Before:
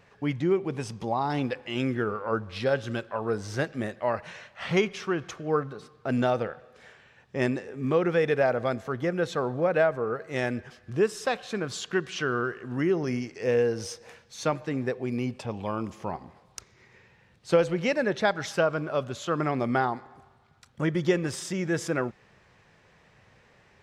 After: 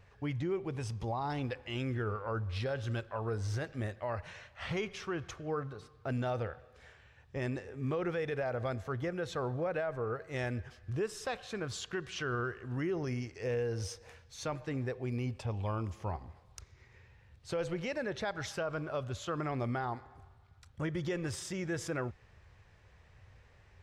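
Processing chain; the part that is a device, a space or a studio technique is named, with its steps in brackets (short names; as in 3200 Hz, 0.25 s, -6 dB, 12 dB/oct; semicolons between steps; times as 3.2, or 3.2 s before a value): car stereo with a boomy subwoofer (resonant low shelf 120 Hz +13 dB, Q 1.5; limiter -20.5 dBFS, peak gain reduction 9.5 dB); gain -6 dB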